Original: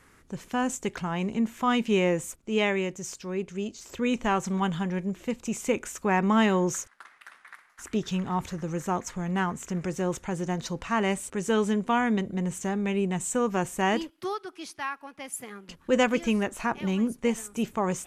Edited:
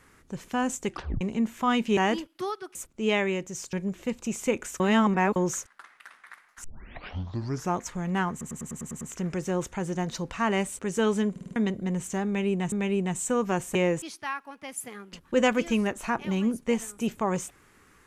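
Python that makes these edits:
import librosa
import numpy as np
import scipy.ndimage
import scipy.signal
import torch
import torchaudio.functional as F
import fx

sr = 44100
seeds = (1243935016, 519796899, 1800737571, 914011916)

y = fx.edit(x, sr, fx.tape_stop(start_s=0.9, length_s=0.31),
    fx.swap(start_s=1.97, length_s=0.27, other_s=13.8, other_length_s=0.78),
    fx.cut(start_s=3.22, length_s=1.72),
    fx.reverse_span(start_s=6.01, length_s=0.56),
    fx.tape_start(start_s=7.85, length_s=1.11),
    fx.stutter(start_s=9.52, slice_s=0.1, count=8),
    fx.stutter_over(start_s=11.82, slice_s=0.05, count=5),
    fx.repeat(start_s=12.77, length_s=0.46, count=2), tone=tone)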